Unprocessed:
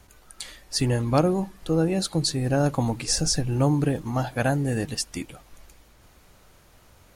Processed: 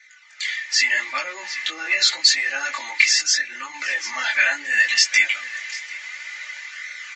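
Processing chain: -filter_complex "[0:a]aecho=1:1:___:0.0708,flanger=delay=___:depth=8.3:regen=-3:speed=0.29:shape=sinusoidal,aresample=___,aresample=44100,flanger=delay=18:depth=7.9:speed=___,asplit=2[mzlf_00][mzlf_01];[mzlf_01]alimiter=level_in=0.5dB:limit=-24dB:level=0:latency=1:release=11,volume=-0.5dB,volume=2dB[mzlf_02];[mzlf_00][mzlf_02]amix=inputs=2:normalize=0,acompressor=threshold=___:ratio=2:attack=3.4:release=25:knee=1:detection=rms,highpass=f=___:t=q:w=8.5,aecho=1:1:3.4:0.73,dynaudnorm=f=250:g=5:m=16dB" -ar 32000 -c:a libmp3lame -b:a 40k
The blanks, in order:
743, 0.5, 16000, 0.79, -35dB, 2000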